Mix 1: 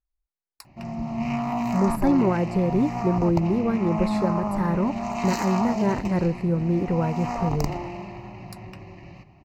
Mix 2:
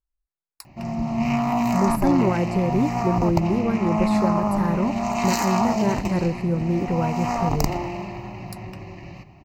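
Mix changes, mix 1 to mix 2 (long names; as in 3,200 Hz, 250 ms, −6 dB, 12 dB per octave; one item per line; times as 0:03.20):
background +4.5 dB
master: add high-shelf EQ 7,200 Hz +7 dB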